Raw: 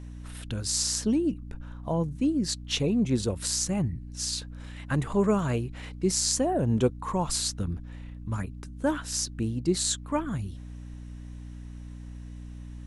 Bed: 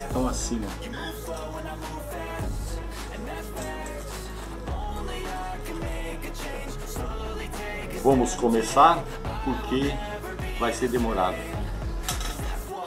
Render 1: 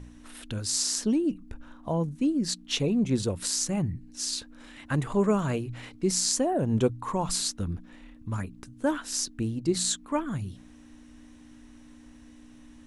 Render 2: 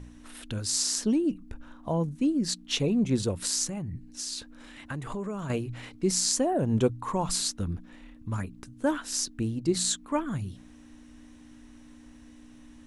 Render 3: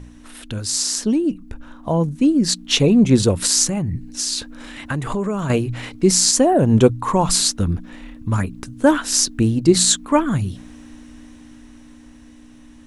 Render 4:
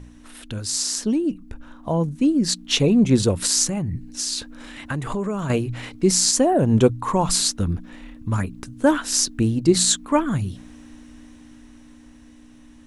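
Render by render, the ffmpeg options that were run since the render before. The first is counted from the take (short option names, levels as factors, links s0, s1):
-af "bandreject=f=60:t=h:w=4,bandreject=f=120:t=h:w=4,bandreject=f=180:t=h:w=4"
-filter_complex "[0:a]asettb=1/sr,asplit=3[s0][s1][s2];[s0]atrim=end=3.684[s3];[s1]atrim=start=3.68:end=5.5,asetpts=PTS-STARTPTS,afade=t=in:d=0.004:c=qsin,afade=t=out:st=1.816:d=0.004:c=qsin,acompressor=threshold=0.0282:ratio=6:attack=3.2:release=140:knee=1:detection=peak[s4];[s2]atrim=start=5.496[s5];[s3][s4]acrossfade=d=0.004:c1=hsin:c2=qsin[s6];[s6][s5]acrossfade=d=0.004:c1=qsin:c2=hsin"
-af "dynaudnorm=f=270:g=17:m=2.51,alimiter=level_in=2:limit=0.891:release=50:level=0:latency=1"
-af "volume=0.708"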